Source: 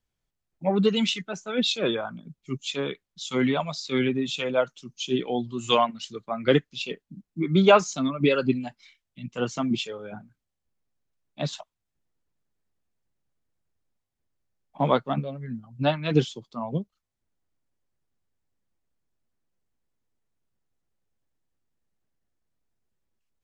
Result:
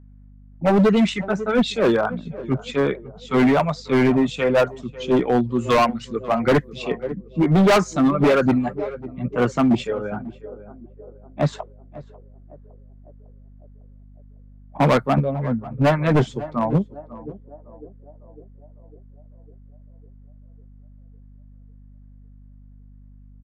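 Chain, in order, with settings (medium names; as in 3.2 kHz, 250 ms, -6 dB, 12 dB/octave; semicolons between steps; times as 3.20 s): on a send: band-passed feedback delay 552 ms, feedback 59%, band-pass 480 Hz, level -19 dB; on the sum: level-controlled noise filter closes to 2 kHz, open at -23 dBFS; high-order bell 4.3 kHz -14 dB; in parallel at -5.5 dB: sine folder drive 9 dB, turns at -5 dBFS; on the sum: hum 50 Hz, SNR 26 dB; hard clipper -12.5 dBFS, distortion -11 dB; echo from a far wall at 93 m, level -20 dB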